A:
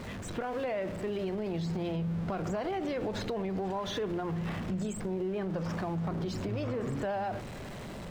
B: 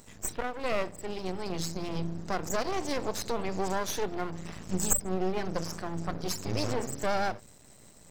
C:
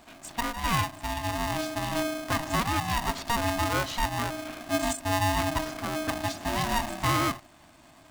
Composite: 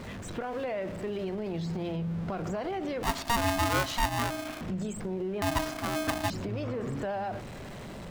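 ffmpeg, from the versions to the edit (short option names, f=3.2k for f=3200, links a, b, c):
-filter_complex "[2:a]asplit=2[a][b];[0:a]asplit=3[c][d][e];[c]atrim=end=3.032[f];[a]atrim=start=3.028:end=4.612[g];[d]atrim=start=4.608:end=5.422[h];[b]atrim=start=5.418:end=6.302[i];[e]atrim=start=6.298[j];[f][g]acrossfade=d=0.004:c1=hsin:c2=hsin[k];[k][h]acrossfade=d=0.004:c1=hsin:c2=hsin[l];[l][i]acrossfade=d=0.004:c1=hsin:c2=hsin[m];[m][j]acrossfade=d=0.004:c1=hsin:c2=hsin"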